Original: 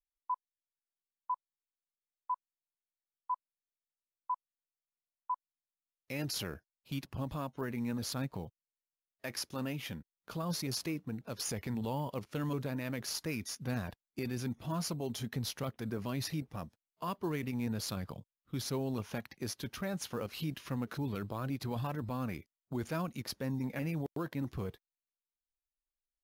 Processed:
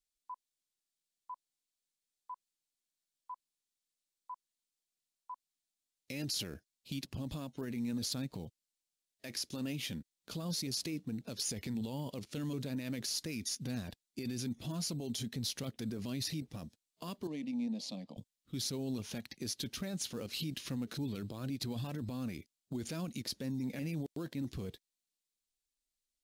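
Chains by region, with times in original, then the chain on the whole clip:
0:17.27–0:18.17: high-pass filter 230 Hz + head-to-tape spacing loss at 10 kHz 21 dB + phaser with its sweep stopped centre 390 Hz, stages 6
whole clip: parametric band 1,400 Hz −2.5 dB; brickwall limiter −33.5 dBFS; octave-band graphic EQ 250/1,000/4,000/8,000 Hz +5/−6/+7/+8 dB

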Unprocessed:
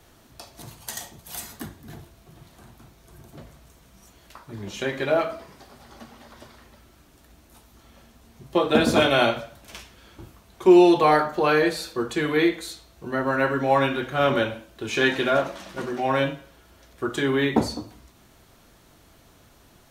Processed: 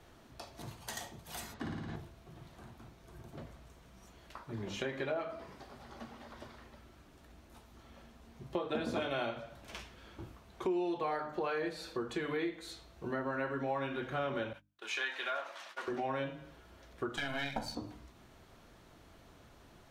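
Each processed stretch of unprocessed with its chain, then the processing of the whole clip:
0:01.54–0:01.96: low-pass filter 4,700 Hz + flutter between parallel walls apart 9.6 metres, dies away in 1.5 s
0:14.53–0:15.88: high-pass filter 980 Hz + noise gate −48 dBFS, range −35 dB
0:17.17–0:17.75: gain on one half-wave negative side −12 dB + spectral tilt +2 dB per octave + comb filter 1.3 ms, depth 91%
whole clip: low-pass filter 3,300 Hz 6 dB per octave; mains-hum notches 50/100/150/200/250/300 Hz; downward compressor 4 to 1, threshold −32 dBFS; level −3 dB

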